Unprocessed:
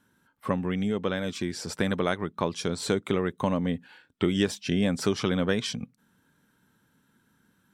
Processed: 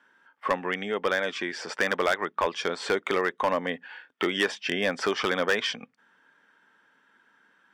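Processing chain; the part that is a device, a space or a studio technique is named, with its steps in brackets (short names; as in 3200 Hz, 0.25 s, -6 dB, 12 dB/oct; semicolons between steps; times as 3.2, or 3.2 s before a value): megaphone (BPF 580–3300 Hz; bell 1800 Hz +5 dB 0.29 oct; hard clip -24.5 dBFS, distortion -12 dB); notch 4000 Hz, Q 8.4; gain +8 dB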